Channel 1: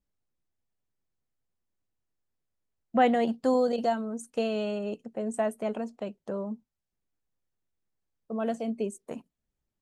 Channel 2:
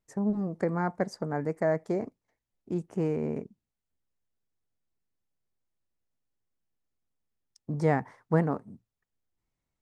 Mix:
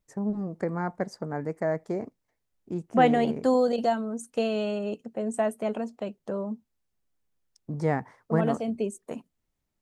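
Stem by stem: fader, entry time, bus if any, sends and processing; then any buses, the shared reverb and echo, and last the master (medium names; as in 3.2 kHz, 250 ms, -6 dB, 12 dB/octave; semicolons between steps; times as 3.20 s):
+2.0 dB, 0.00 s, no send, none
-1.0 dB, 0.00 s, no send, none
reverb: none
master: none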